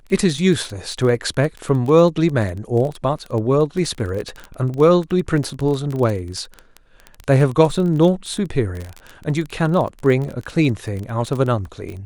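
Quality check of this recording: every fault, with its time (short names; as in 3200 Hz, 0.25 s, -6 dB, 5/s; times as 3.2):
crackle 19/s -23 dBFS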